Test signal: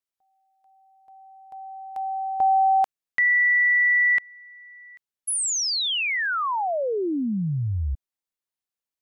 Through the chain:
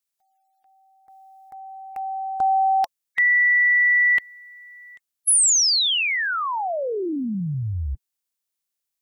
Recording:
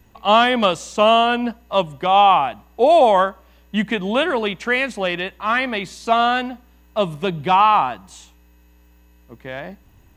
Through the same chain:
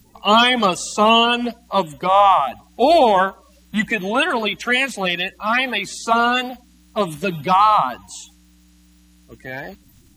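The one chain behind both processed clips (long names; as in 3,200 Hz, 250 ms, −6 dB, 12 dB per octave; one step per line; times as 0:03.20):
spectral magnitudes quantised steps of 30 dB
high-shelf EQ 3,600 Hz +10.5 dB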